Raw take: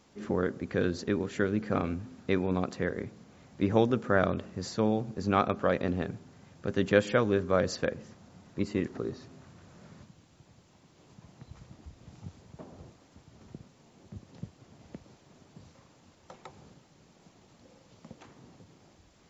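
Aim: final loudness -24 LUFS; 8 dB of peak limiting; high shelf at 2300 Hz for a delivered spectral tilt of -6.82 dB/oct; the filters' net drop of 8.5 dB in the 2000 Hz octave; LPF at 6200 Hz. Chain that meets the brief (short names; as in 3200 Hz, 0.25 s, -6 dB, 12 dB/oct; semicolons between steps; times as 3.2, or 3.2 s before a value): LPF 6200 Hz; bell 2000 Hz -8.5 dB; high shelf 2300 Hz -7.5 dB; gain +9 dB; limiter -9.5 dBFS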